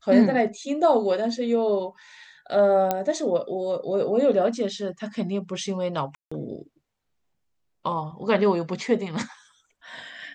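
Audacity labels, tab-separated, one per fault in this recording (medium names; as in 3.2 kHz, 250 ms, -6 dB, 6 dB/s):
2.910000	2.910000	pop -9 dBFS
6.150000	6.320000	dropout 165 ms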